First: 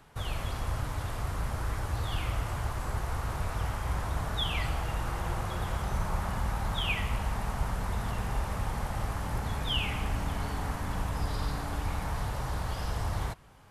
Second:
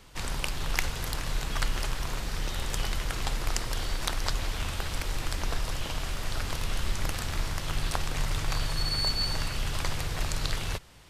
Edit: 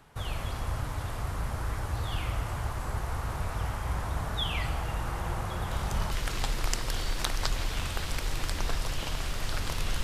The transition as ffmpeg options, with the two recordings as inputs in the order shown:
ffmpeg -i cue0.wav -i cue1.wav -filter_complex "[1:a]asplit=2[link_01][link_02];[0:a]apad=whole_dur=10.03,atrim=end=10.03,atrim=end=6.112[link_03];[link_02]atrim=start=2.938:end=6.86[link_04];[link_01]atrim=start=2.54:end=2.94,asetpts=PTS-STARTPTS,volume=-8dB,afade=type=in:duration=0.004:curve=hsin,afade=type=out:start_time=0.396:duration=0.004:curve=hsin,adelay=5710[link_05];[link_03][link_04]acrossfade=duration=0.004:curve1=hsin:curve2=hsin[link_06];[link_06][link_05]amix=inputs=2:normalize=0" out.wav

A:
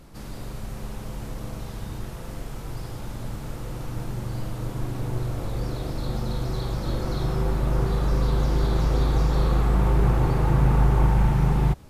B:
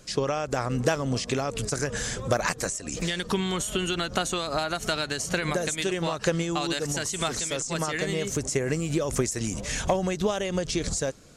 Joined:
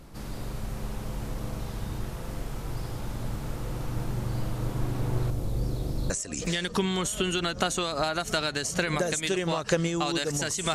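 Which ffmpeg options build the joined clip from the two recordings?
ffmpeg -i cue0.wav -i cue1.wav -filter_complex "[0:a]asettb=1/sr,asplit=3[link_01][link_02][link_03];[link_01]atrim=end=5.304[link_04];[link_02]atrim=start=5.3:end=6.1,asetpts=PTS-STARTPTS,afade=type=in:duration=0.004:curve=qsin,afade=type=out:start_time=0.796:duration=0.004:curve=qsin,equalizer=frequency=1500:width_type=o:width=2.7:gain=-10[link_05];[link_03]atrim=start=6.096[link_06];[link_04][link_05]acrossfade=duration=0.004:curve1=hsin:curve2=qsin[link_07];[link_07][link_06]acrossfade=duration=0.004:curve1=qsin:curve2=hsin,apad=whole_dur=10.74,atrim=end=10.74,atrim=end=6.102[link_08];[1:a]atrim=start=2.648:end=7.29[link_09];[link_08][link_09]acrossfade=duration=0.004:curve1=hsin:curve2=hsin" out.wav

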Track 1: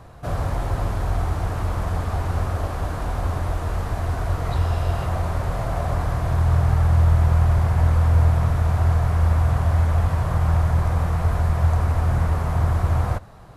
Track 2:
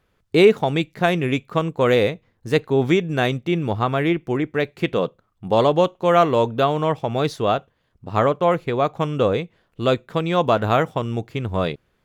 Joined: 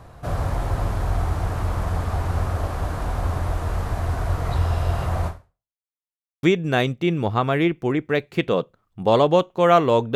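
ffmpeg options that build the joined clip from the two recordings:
ffmpeg -i cue0.wav -i cue1.wav -filter_complex "[0:a]apad=whole_dur=10.15,atrim=end=10.15,asplit=2[link_01][link_02];[link_01]atrim=end=5.77,asetpts=PTS-STARTPTS,afade=type=out:start_time=5.27:duration=0.5:curve=exp[link_03];[link_02]atrim=start=5.77:end=6.43,asetpts=PTS-STARTPTS,volume=0[link_04];[1:a]atrim=start=2.88:end=6.6,asetpts=PTS-STARTPTS,afade=type=in:duration=0.004:curve=hsin[link_05];[link_03][link_04][link_05]concat=n=3:v=0:a=1" out.wav

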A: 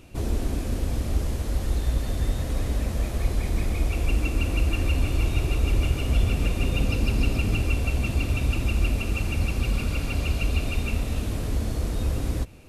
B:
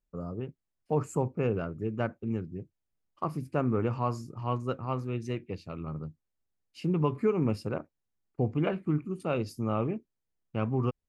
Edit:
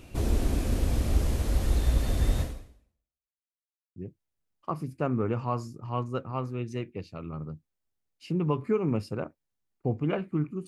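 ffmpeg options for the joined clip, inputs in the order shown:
ffmpeg -i cue0.wav -i cue1.wav -filter_complex "[0:a]apad=whole_dur=10.67,atrim=end=10.67,asplit=2[link_01][link_02];[link_01]atrim=end=3.41,asetpts=PTS-STARTPTS,afade=type=out:start_time=2.41:duration=1:curve=exp[link_03];[link_02]atrim=start=3.41:end=3.96,asetpts=PTS-STARTPTS,volume=0[link_04];[1:a]atrim=start=2.5:end=9.21,asetpts=PTS-STARTPTS,afade=type=in:duration=0.004:curve=hsin[link_05];[link_03][link_04][link_05]concat=n=3:v=0:a=1" out.wav

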